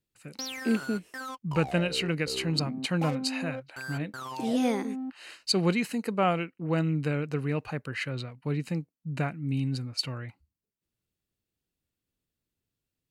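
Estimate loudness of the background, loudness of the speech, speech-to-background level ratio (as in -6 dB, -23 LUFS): -38.5 LUFS, -30.5 LUFS, 8.0 dB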